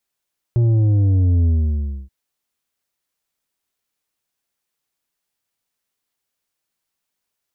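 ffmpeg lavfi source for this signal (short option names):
-f lavfi -i "aevalsrc='0.224*clip((1.53-t)/0.63,0,1)*tanh(2.24*sin(2*PI*120*1.53/log(65/120)*(exp(log(65/120)*t/1.53)-1)))/tanh(2.24)':d=1.53:s=44100"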